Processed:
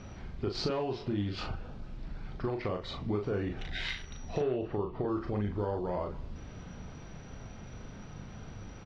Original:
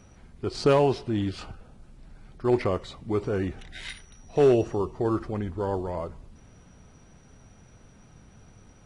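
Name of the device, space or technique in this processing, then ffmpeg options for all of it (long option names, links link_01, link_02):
serial compression, peaks first: -filter_complex "[0:a]acompressor=threshold=-32dB:ratio=5,acompressor=threshold=-45dB:ratio=1.5,asettb=1/sr,asplit=3[link_01][link_02][link_03];[link_01]atrim=end=4.404[link_04];[link_02]atrim=start=4.4:end=5.08,asetpts=PTS-STARTPTS,afade=type=in:duration=0.004:curve=qsin,afade=type=out:start_time=0.676:duration=0.004:curve=qsin,lowpass=frequency=3900:width=0.5412,lowpass=frequency=3900:width=1.3066[link_05];[link_03]atrim=start=5.076[link_06];[link_04][link_05]acrossfade=duration=0.004:curve1=hsin:curve2=qsin[link_07];[link_07][link_06]acrossfade=duration=0.004:curve1=qsin:curve2=hsin,lowpass=frequency=5200:width=0.5412,lowpass=frequency=5200:width=1.3066,asplit=2[link_08][link_09];[link_09]adelay=39,volume=-5dB[link_10];[link_08][link_10]amix=inputs=2:normalize=0,volume=6dB"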